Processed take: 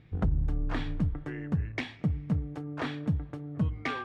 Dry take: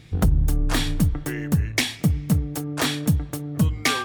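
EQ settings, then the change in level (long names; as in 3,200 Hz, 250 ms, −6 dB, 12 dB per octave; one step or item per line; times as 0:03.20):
low-pass filter 2,100 Hz 12 dB per octave
−8.5 dB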